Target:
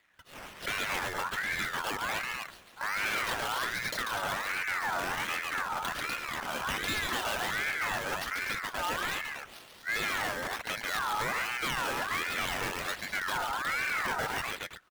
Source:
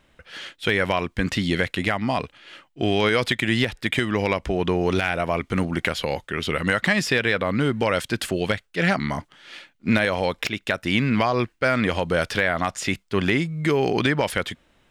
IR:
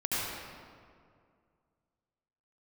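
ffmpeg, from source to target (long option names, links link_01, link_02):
-af "acrusher=samples=11:mix=1:aa=0.000001:lfo=1:lforange=11:lforate=3,aecho=1:1:142|247:0.531|0.501,asoftclip=type=tanh:threshold=-19dB,aeval=exprs='val(0)*sin(2*PI*1500*n/s+1500*0.3/1.3*sin(2*PI*1.3*n/s))':channel_layout=same,volume=-5.5dB"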